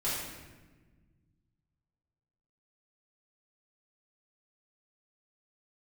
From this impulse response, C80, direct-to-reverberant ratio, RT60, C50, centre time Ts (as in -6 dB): 2.5 dB, -10.5 dB, 1.3 s, 0.0 dB, 81 ms